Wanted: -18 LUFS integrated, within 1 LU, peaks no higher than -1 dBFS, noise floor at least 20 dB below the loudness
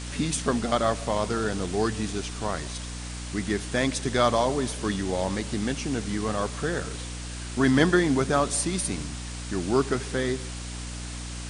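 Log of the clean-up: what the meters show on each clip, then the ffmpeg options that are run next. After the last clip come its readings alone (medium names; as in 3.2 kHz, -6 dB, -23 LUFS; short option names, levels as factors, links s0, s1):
hum 60 Hz; highest harmonic 300 Hz; hum level -34 dBFS; noise floor -36 dBFS; noise floor target -47 dBFS; loudness -27.0 LUFS; peak level -7.0 dBFS; loudness target -18.0 LUFS
-> -af "bandreject=f=60:t=h:w=6,bandreject=f=120:t=h:w=6,bandreject=f=180:t=h:w=6,bandreject=f=240:t=h:w=6,bandreject=f=300:t=h:w=6"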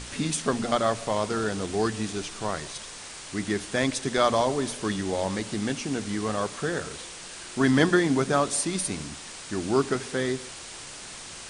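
hum not found; noise floor -41 dBFS; noise floor target -47 dBFS
-> -af "afftdn=nr=6:nf=-41"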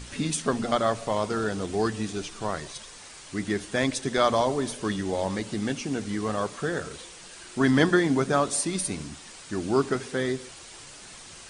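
noise floor -46 dBFS; noise floor target -47 dBFS
-> -af "afftdn=nr=6:nf=-46"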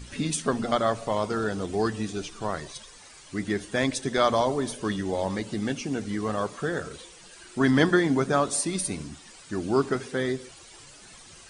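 noise floor -49 dBFS; loudness -27.0 LUFS; peak level -7.0 dBFS; loudness target -18.0 LUFS
-> -af "volume=2.82,alimiter=limit=0.891:level=0:latency=1"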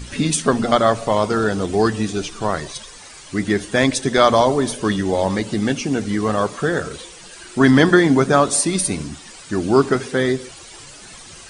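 loudness -18.5 LUFS; peak level -1.0 dBFS; noise floor -40 dBFS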